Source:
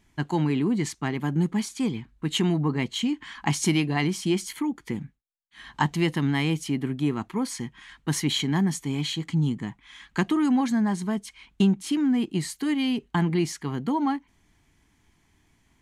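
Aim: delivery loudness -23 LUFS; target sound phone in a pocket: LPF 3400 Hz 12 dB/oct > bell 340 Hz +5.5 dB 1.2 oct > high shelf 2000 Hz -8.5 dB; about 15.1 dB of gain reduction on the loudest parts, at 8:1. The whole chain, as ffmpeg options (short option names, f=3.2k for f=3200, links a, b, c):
-af "acompressor=threshold=-34dB:ratio=8,lowpass=3.4k,equalizer=f=340:t=o:w=1.2:g=5.5,highshelf=f=2k:g=-8.5,volume=13dB"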